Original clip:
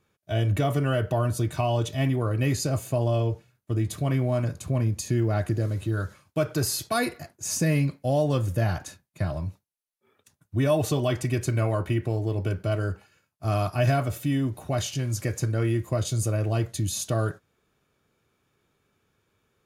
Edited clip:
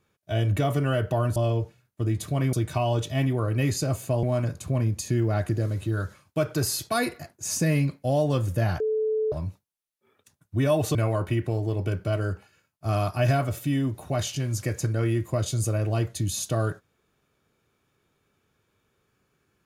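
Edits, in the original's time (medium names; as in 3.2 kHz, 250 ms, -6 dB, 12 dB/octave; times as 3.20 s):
3.06–4.23 s: move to 1.36 s
8.80–9.32 s: bleep 435 Hz -22 dBFS
10.95–11.54 s: delete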